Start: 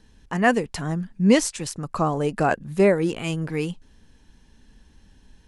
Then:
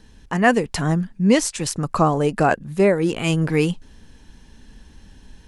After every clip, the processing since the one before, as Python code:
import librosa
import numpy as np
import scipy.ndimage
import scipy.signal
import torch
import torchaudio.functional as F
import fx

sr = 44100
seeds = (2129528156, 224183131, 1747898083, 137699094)

y = fx.rider(x, sr, range_db=5, speed_s=0.5)
y = y * librosa.db_to_amplitude(3.5)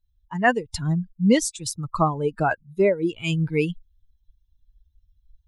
y = fx.bin_expand(x, sr, power=2.0)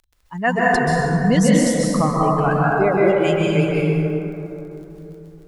y = fx.dmg_crackle(x, sr, seeds[0], per_s=21.0, level_db=-39.0)
y = fx.rev_plate(y, sr, seeds[1], rt60_s=3.4, hf_ratio=0.35, predelay_ms=120, drr_db=-6.0)
y = y * librosa.db_to_amplitude(-1.0)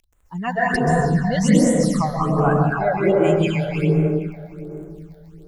y = fx.phaser_stages(x, sr, stages=8, low_hz=320.0, high_hz=4800.0, hz=1.3, feedback_pct=35)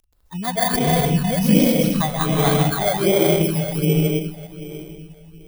y = fx.bit_reversed(x, sr, seeds[2], block=16)